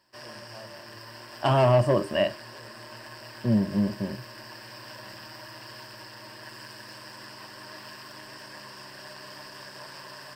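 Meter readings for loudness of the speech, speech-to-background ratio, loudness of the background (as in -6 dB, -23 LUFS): -24.5 LUFS, 18.0 dB, -42.5 LUFS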